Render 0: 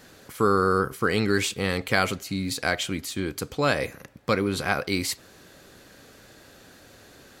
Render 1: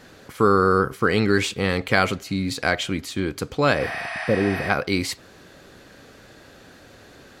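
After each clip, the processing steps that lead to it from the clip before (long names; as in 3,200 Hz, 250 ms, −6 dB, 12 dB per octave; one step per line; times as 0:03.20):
healed spectral selection 0:03.82–0:04.67, 640–11,000 Hz before
high-shelf EQ 6,900 Hz −11 dB
level +4 dB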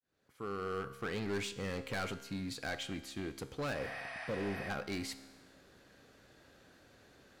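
fade in at the beginning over 1.33 s
hard clipping −19 dBFS, distortion −8 dB
tuned comb filter 67 Hz, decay 1.3 s, harmonics all, mix 60%
level −7.5 dB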